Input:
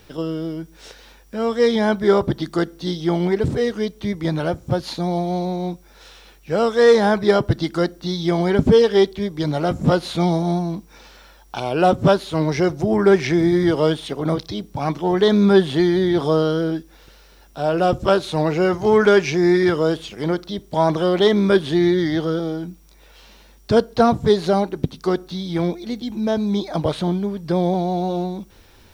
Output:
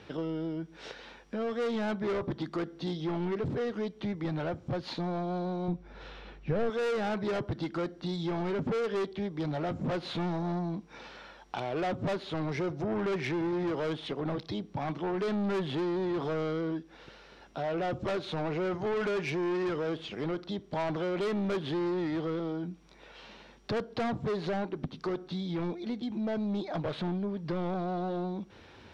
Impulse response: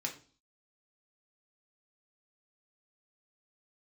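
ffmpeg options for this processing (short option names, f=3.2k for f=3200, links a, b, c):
-filter_complex "[0:a]highpass=100,lowpass=3.4k,asoftclip=type=tanh:threshold=-19.5dB,acompressor=threshold=-37dB:ratio=2,asettb=1/sr,asplit=3[a][b][c];[a]atrim=end=5.684[d];[b]atrim=start=5.68:end=6.7,asetpts=PTS-STARTPTS,afade=t=in:d=0.004:c=qsin,afade=t=out:st=1.016:d=0.004:c=qsin,aemphasis=mode=reproduction:type=bsi[e];[c]atrim=start=6.696[f];[d][e]acrossfade=d=0.004:c1=hsin:c2=qsin[g];[g][f]acrossfade=d=0.004:c1=qsin:c2=hsin"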